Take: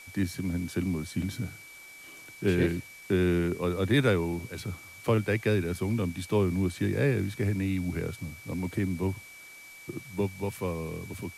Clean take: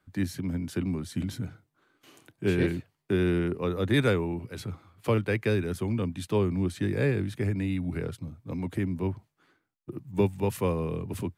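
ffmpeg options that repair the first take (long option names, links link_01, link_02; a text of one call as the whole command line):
ffmpeg -i in.wav -af "adeclick=threshold=4,bandreject=frequency=2300:width=30,afwtdn=0.0025,asetnsamples=nb_out_samples=441:pad=0,asendcmd='10.02 volume volume 5dB',volume=0dB" out.wav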